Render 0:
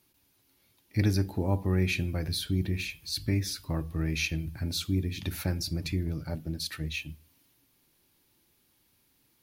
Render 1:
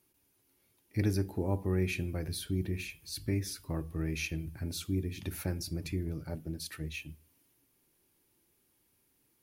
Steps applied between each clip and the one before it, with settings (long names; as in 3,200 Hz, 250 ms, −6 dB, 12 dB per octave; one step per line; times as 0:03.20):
graphic EQ with 15 bands 400 Hz +5 dB, 4,000 Hz −5 dB, 10,000 Hz +4 dB
level −5 dB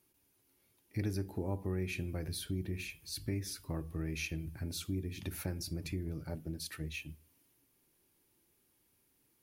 downward compressor 2 to 1, threshold −34 dBFS, peak gain reduction 6 dB
level −1 dB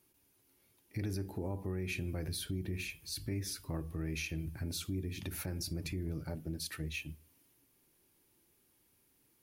brickwall limiter −30.5 dBFS, peak gain reduction 6 dB
level +2 dB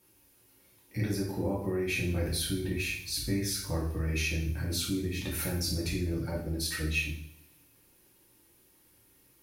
coupled-rooms reverb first 0.57 s, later 1.9 s, from −26 dB, DRR −5 dB
level +2.5 dB